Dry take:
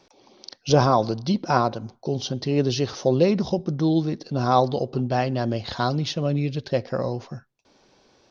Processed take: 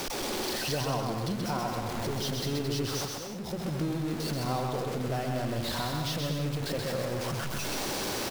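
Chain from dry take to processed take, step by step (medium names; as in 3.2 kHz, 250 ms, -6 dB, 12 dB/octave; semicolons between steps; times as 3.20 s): jump at every zero crossing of -20 dBFS; compression 2.5:1, threshold -25 dBFS, peak gain reduction 10 dB; slow attack 631 ms; bouncing-ball echo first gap 130 ms, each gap 0.7×, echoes 5; trim -8.5 dB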